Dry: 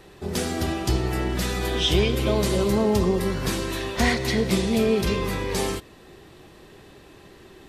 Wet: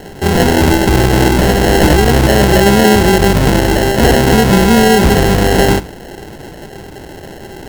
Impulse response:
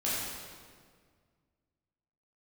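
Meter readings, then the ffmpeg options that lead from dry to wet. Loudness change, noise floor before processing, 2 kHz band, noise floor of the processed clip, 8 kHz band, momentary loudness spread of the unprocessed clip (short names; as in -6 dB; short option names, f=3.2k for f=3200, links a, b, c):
+13.5 dB, -49 dBFS, +15.0 dB, -32 dBFS, +13.0 dB, 6 LU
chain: -af "bandreject=f=60:t=h:w=6,bandreject=f=120:t=h:w=6,bandreject=f=180:t=h:w=6,bandreject=f=240:t=h:w=6,bandreject=f=300:t=h:w=6,bandreject=f=360:t=h:w=6,acrusher=samples=37:mix=1:aa=0.000001,alimiter=level_in=19dB:limit=-1dB:release=50:level=0:latency=1,volume=-1dB"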